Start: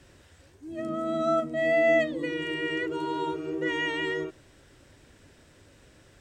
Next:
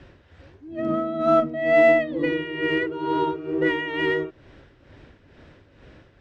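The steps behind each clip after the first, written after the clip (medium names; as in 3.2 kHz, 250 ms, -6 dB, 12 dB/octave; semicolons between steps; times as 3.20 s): distance through air 250 m; tremolo 2.2 Hz, depth 64%; in parallel at -10 dB: one-sided clip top -31 dBFS; on the sum: trim +7 dB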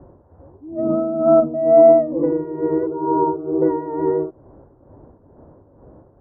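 steep low-pass 1 kHz 36 dB/octave; tilt EQ +1.5 dB/octave; trim +7.5 dB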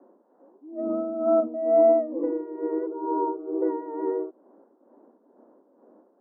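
steep high-pass 210 Hz 72 dB/octave; trim -8 dB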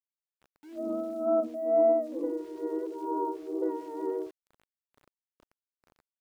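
small samples zeroed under -47 dBFS; trim -5 dB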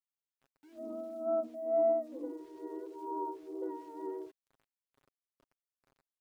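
comb 7.4 ms, depth 51%; trim -8.5 dB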